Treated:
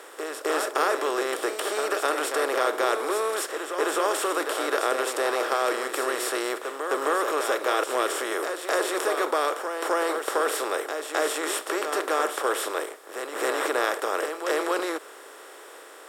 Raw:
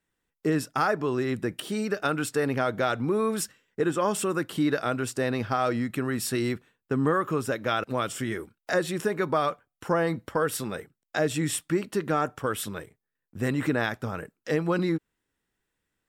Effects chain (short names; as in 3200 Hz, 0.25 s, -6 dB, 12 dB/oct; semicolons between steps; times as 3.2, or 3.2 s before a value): per-bin compression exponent 0.4; steep high-pass 370 Hz 36 dB/oct; reverse echo 0.261 s -6.5 dB; gain -4 dB